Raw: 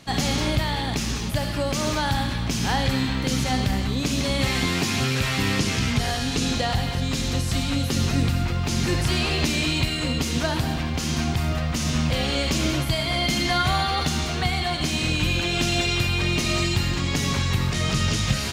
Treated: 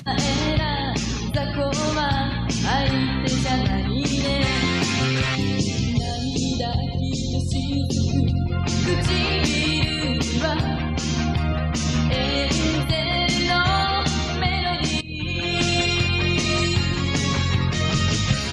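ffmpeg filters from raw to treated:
-filter_complex "[0:a]asettb=1/sr,asplit=3[a][b][c];[a]atrim=end=5.354[d];[b]atrim=start=5.35:end=8.52,asetpts=PTS-STARTPTS,afade=t=in:d=0.004:c=qsin,afade=t=out:st=3.166:d=0.004:c=qsin,equalizer=f=1.5k:t=o:w=1.7:g=-11[e];[c]atrim=start=8.516[f];[d][e]acrossfade=d=0.004:c1=hsin:c2=qsin[g];[g][f]acrossfade=d=0.004:c1=qsin:c2=hsin,asplit=2[h][i];[h]atrim=end=15.01,asetpts=PTS-STARTPTS,afade=t=out:st=15.006:d=0.004:c=hsin:silence=0.133352[j];[i]atrim=start=15.01,asetpts=PTS-STARTPTS,afade=t=in:d=0.58:silence=0.133352[k];[j][k]concat=n=2:v=0:a=1,afftdn=nr=30:nf=-36,highpass=56,acompressor=mode=upward:threshold=-26dB:ratio=2.5,volume=2.5dB"

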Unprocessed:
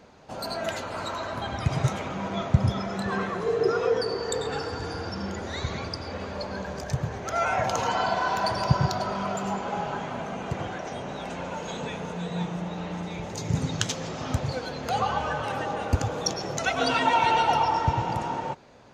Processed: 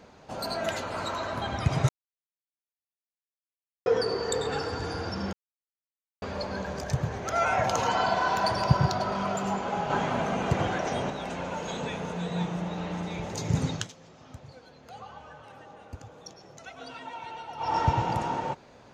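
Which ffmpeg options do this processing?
-filter_complex "[0:a]asettb=1/sr,asplit=3[a][b][c];[a]atrim=end=8.604[d];[b]atrim=start=8.6:end=9.12,asetpts=PTS-STARTPTS,afade=t=in:d=0.004:c=qsin,afade=t=out:st=0.516:d=0.004:c=qsin,adynamicsmooth=sensitivity=5.5:basefreq=7.3k[e];[c]atrim=start=9.116[f];[d][e]acrossfade=d=0.004:c1=hsin:c2=qsin[g];[g][f]acrossfade=d=0.004:c1=qsin:c2=hsin,asplit=9[h][i][j][k][l][m][n][o][p];[h]atrim=end=1.89,asetpts=PTS-STARTPTS,afade=t=out:st=1.886:d=0.004:c=hsin[q];[i]atrim=start=1.89:end=3.86,asetpts=PTS-STARTPTS,volume=0[r];[j]atrim=start=3.86:end=5.33,asetpts=PTS-STARTPTS,afade=t=in:d=0.004:c=hsin,afade=t=out:st=1.466:d=0.004:c=hsin[s];[k]atrim=start=5.33:end=6.22,asetpts=PTS-STARTPTS,volume=0[t];[l]atrim=start=6.22:end=9.902,asetpts=PTS-STARTPTS,afade=t=in:d=0.004:c=hsin[u];[m]atrim=start=9.898:end=11.102,asetpts=PTS-STARTPTS,volume=5dB[v];[n]atrim=start=11.098:end=13.9,asetpts=PTS-STARTPTS,afade=t=out:st=2.582:d=0.22:silence=0.11885[w];[o]atrim=start=13.9:end=17.57,asetpts=PTS-STARTPTS,volume=-18.5dB[x];[p]atrim=start=17.57,asetpts=PTS-STARTPTS,afade=t=in:d=0.22:silence=0.11885[y];[q][r][s][t][u]concat=n=5:v=0:a=1[z];[z][v]acrossfade=d=0.004:c1=hsin:c2=hsin[aa];[w][x][y]concat=n=3:v=0:a=1[ab];[aa][ab]acrossfade=d=0.004:c1=hsin:c2=hsin"

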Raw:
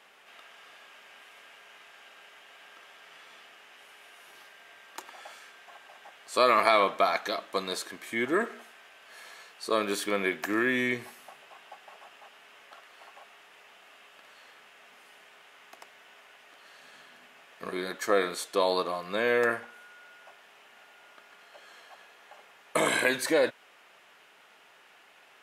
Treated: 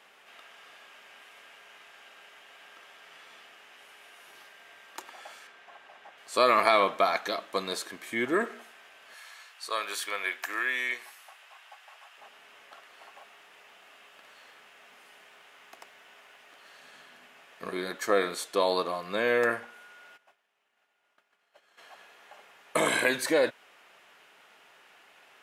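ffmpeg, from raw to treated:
-filter_complex "[0:a]asettb=1/sr,asplit=3[a][b][c];[a]atrim=end=5.474[d];[b]atrim=start=5.47:end=6.18,asetpts=PTS-STARTPTS,afade=t=in:d=0.004:c=qsin,afade=t=out:st=0.706:d=0.004:c=qsin,lowpass=f=3.4k:p=1[e];[c]atrim=start=6.176[f];[d][e]acrossfade=d=0.004:c1=hsin:c2=qsin[g];[g][f]acrossfade=d=0.004:c1=qsin:c2=hsin,asettb=1/sr,asplit=3[h][i][j];[h]atrim=end=9.144[k];[i]atrim=start=9.14:end=12.18,asetpts=PTS-STARTPTS,afade=t=in:d=0.004:c=qsin,afade=t=out:st=3.036:d=0.004:c=qsin,highpass=890[l];[j]atrim=start=12.176[m];[k][l]acrossfade=d=0.004:c1=hsin:c2=qsin[n];[n][m]acrossfade=d=0.004:c1=qsin:c2=hsin,asettb=1/sr,asplit=3[o][p][q];[o]atrim=end=13.174[r];[p]atrim=start=13.17:end=16.8,asetpts=PTS-STARTPTS,afade=t=in:d=0.004:c=qsin,afade=t=out:st=3.626:d=0.004:c=qsin,acrusher=bits=8:mode=log:mix=0:aa=0.000001[s];[q]atrim=start=16.796[t];[r][s]acrossfade=d=0.004:c1=hsin:c2=qsin[u];[u][t]acrossfade=d=0.004:c1=qsin:c2=hsin,asplit=3[v][w][x];[v]afade=t=out:st=20.16:d=0.02[y];[w]agate=range=-33dB:threshold=-44dB:ratio=3:release=100:detection=peak,afade=t=in:st=20.16:d=0.02,afade=t=out:st=21.77:d=0.02[z];[x]afade=t=in:st=21.77:d=0.02[aa];[y][z][aa]amix=inputs=3:normalize=0"

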